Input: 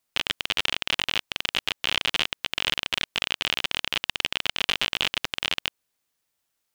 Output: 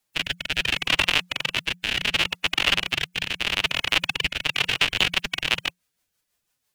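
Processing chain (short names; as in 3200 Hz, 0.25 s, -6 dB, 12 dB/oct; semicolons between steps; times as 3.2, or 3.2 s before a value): rotary speaker horn 0.7 Hz, later 6 Hz, at 4.09; formant-preserving pitch shift +6.5 st; frequency shift -180 Hz; gain +7 dB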